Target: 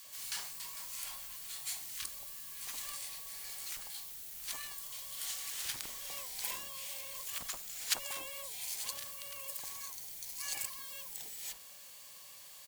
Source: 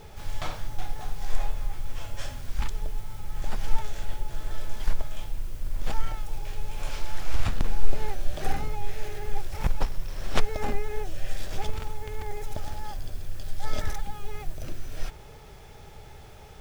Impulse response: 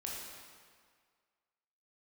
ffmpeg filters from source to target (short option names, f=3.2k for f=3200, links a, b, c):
-filter_complex "[0:a]aderivative,acrossover=split=870[a][b];[a]adelay=60[c];[c][b]amix=inputs=2:normalize=0,asetrate=57771,aresample=44100,volume=8dB"